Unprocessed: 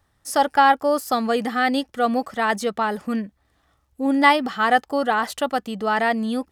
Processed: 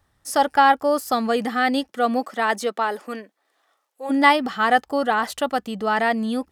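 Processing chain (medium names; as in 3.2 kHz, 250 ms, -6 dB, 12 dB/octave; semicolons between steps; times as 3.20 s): 1.87–4.09 s: high-pass 170 Hz -> 510 Hz 24 dB/octave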